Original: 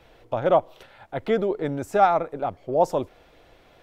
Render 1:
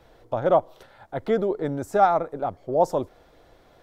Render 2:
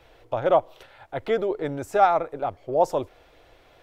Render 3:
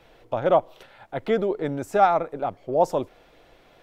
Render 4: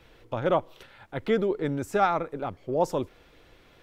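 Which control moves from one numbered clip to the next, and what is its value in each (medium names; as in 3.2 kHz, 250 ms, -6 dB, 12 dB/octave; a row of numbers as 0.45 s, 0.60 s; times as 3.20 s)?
peaking EQ, frequency: 2.6 kHz, 200 Hz, 71 Hz, 690 Hz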